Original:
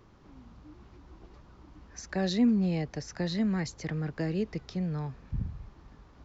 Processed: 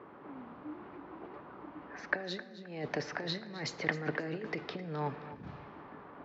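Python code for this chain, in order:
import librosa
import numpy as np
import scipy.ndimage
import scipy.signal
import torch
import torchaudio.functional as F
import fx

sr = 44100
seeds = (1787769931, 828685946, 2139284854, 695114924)

p1 = fx.env_lowpass(x, sr, base_hz=1700.0, full_db=-26.0)
p2 = fx.over_compress(p1, sr, threshold_db=-35.0, ratio=-0.5)
p3 = fx.bandpass_edges(p2, sr, low_hz=320.0, high_hz=3200.0)
p4 = p3 + fx.echo_feedback(p3, sr, ms=263, feedback_pct=31, wet_db=-15.0, dry=0)
p5 = fx.room_shoebox(p4, sr, seeds[0], volume_m3=970.0, walls='mixed', distance_m=0.32)
y = p5 * librosa.db_to_amplitude(5.0)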